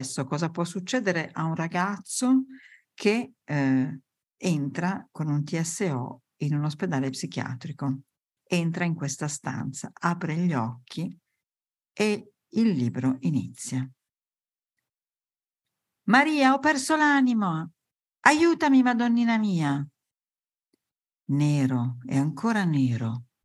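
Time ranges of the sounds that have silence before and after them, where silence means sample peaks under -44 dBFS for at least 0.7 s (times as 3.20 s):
11.97–13.89 s
16.08–19.88 s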